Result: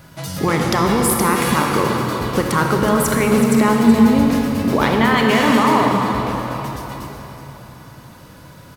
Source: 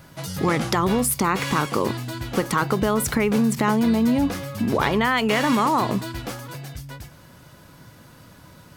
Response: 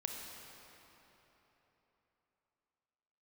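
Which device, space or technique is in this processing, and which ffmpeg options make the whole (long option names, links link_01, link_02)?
cave: -filter_complex "[0:a]asettb=1/sr,asplit=3[link_01][link_02][link_03];[link_01]atrim=end=5.764[link_04];[link_02]atrim=start=5.76:end=6.61,asetpts=PTS-STARTPTS,afade=type=in:duration=0.004:curve=qsin,afade=type=out:start_time=0.846:duration=0.004:curve=qsin,acrossover=split=3400[link_05][link_06];[link_06]acompressor=threshold=-46dB:ratio=4:attack=1:release=60[link_07];[link_05][link_07]amix=inputs=2:normalize=0[link_08];[link_03]atrim=start=6.606[link_09];[link_04][link_08]acrossfade=duration=0.004:curve1=hsin:curve2=qsin[link_10];[link_10][link_09]acrossfade=duration=0.004:curve1=qsin:curve2=hsin,aecho=1:1:374:0.266[link_11];[1:a]atrim=start_sample=2205[link_12];[link_11][link_12]afir=irnorm=-1:irlink=0,volume=5dB"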